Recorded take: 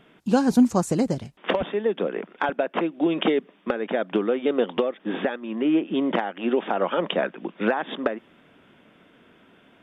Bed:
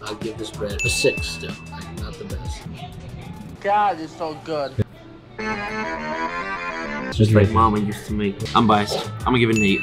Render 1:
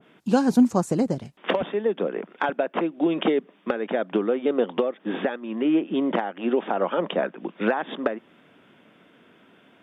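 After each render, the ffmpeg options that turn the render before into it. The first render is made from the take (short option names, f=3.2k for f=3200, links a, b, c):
-af "highpass=110,adynamicequalizer=threshold=0.0126:dfrequency=1600:dqfactor=0.7:tfrequency=1600:tqfactor=0.7:attack=5:release=100:ratio=0.375:range=3:mode=cutabove:tftype=highshelf"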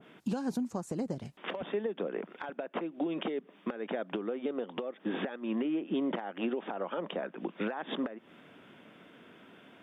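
-af "acompressor=threshold=-28dB:ratio=6,alimiter=limit=-23.5dB:level=0:latency=1:release=278"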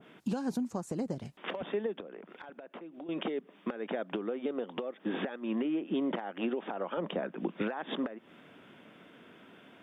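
-filter_complex "[0:a]asettb=1/sr,asplit=3[a][b][c];[a]atrim=end=2.004[d];[b]atrim=start=2:end=3.09,asetpts=PTS-STARTPTS,afade=t=in:d=0.004:c=qsin,afade=t=out:st=1.086:d=0.004:c=qsin,acompressor=threshold=-44dB:ratio=4:attack=3.2:release=140:knee=1:detection=peak[e];[c]atrim=start=3.086[f];[d][e]acrossfade=d=0.004:c1=hsin:c2=qsin[g];[g][f]acrossfade=d=0.004:c1=qsin:c2=hsin,asettb=1/sr,asplit=3[h][i][j];[h]atrim=end=6.974[k];[i]atrim=start=6.97:end=7.62,asetpts=PTS-STARTPTS,afade=t=in:d=0.004:c=qsin,afade=t=out:st=0.646:d=0.004:c=qsin,lowshelf=f=220:g=9[l];[j]atrim=start=7.616[m];[k][l]acrossfade=d=0.004:c1=hsin:c2=qsin[n];[n][m]acrossfade=d=0.004:c1=qsin:c2=hsin"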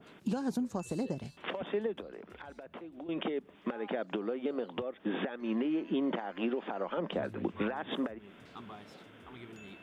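-filter_complex "[1:a]volume=-33dB[a];[0:a][a]amix=inputs=2:normalize=0"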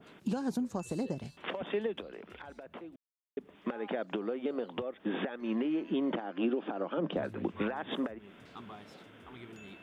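-filter_complex "[0:a]asettb=1/sr,asplit=3[a][b][c];[a]atrim=end=1.704[d];[b]atrim=start=1.7:end=2.39,asetpts=PTS-STARTPTS,afade=t=in:d=0.004:c=qsin,afade=t=out:st=0.686:d=0.004:c=qsin,equalizer=f=2.9k:w=1.3:g=6.5[e];[c]atrim=start=2.386[f];[d][e]acrossfade=d=0.004:c1=hsin:c2=qsin[g];[g][f]acrossfade=d=0.004:c1=qsin:c2=hsin,asettb=1/sr,asplit=3[h][i][j];[h]atrim=end=6.154[k];[i]atrim=start=6.15:end=7.17,asetpts=PTS-STARTPTS,afade=t=in:d=0.004:c=qsin,afade=t=out:st=1.016:d=0.004:c=qsin,highpass=140,equalizer=f=150:t=q:w=4:g=9,equalizer=f=300:t=q:w=4:g=8,equalizer=f=940:t=q:w=4:g=-4,equalizer=f=2k:t=q:w=4:g=-7,equalizer=f=4.4k:t=q:w=4:g=-4,lowpass=f=5.7k:w=0.5412,lowpass=f=5.7k:w=1.3066[l];[j]atrim=start=7.166[m];[k][l]acrossfade=d=0.004:c1=hsin:c2=qsin[n];[n][m]acrossfade=d=0.004:c1=qsin:c2=hsin,asplit=3[o][p][q];[o]atrim=end=2.96,asetpts=PTS-STARTPTS,afade=t=out:st=2.956:d=0.004:c=hsin[r];[p]atrim=start=2.96:end=3.37,asetpts=PTS-STARTPTS,volume=0[s];[q]atrim=start=3.37,asetpts=PTS-STARTPTS,afade=t=in:d=0.004:c=hsin[t];[r][s][t]concat=n=3:v=0:a=1"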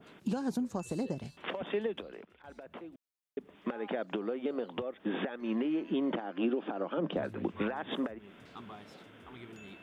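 -filter_complex "[0:a]asplit=3[a][b][c];[a]atrim=end=2.25,asetpts=PTS-STARTPTS,afade=t=out:st=1.87:d=0.38:c=log:silence=0.223872[d];[b]atrim=start=2.25:end=2.44,asetpts=PTS-STARTPTS,volume=-13dB[e];[c]atrim=start=2.44,asetpts=PTS-STARTPTS,afade=t=in:d=0.38:c=log:silence=0.223872[f];[d][e][f]concat=n=3:v=0:a=1"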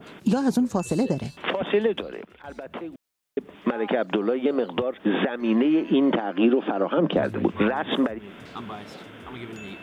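-af "volume=11.5dB"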